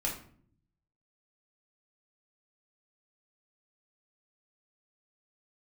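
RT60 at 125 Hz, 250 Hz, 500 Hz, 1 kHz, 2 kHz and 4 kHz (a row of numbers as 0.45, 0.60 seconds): 1.1, 0.95, 0.60, 0.50, 0.45, 0.35 seconds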